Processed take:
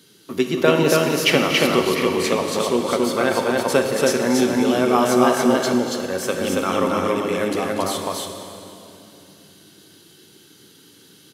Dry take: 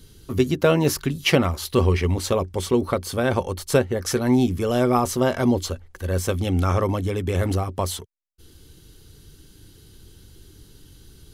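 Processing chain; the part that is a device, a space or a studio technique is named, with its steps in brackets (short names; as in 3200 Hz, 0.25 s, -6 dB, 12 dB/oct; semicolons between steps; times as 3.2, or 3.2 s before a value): stadium PA (HPF 170 Hz 24 dB/oct; bell 2200 Hz +4.5 dB 2.9 oct; loudspeakers at several distances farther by 82 m -12 dB, 96 m -2 dB; reverb RT60 2.9 s, pre-delay 19 ms, DRR 4.5 dB); gain -1 dB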